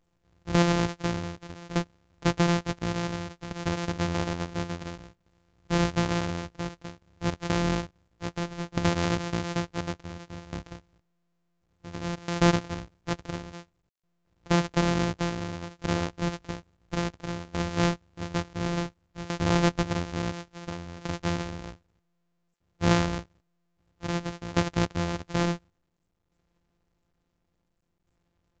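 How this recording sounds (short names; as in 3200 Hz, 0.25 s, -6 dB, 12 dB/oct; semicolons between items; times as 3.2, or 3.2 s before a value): a buzz of ramps at a fixed pitch in blocks of 256 samples; tremolo saw down 0.57 Hz, depth 85%; µ-law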